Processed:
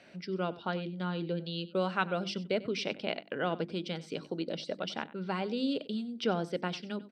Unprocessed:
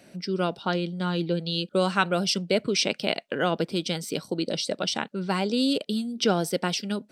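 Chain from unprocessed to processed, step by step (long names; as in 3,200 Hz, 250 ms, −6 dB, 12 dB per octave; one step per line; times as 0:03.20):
low-pass filter 3,200 Hz 12 dB per octave
mains-hum notches 50/100/150/200/250/300/350 Hz
on a send: single-tap delay 94 ms −18.5 dB
on the sum: one half of a high-frequency compander encoder only
level −7 dB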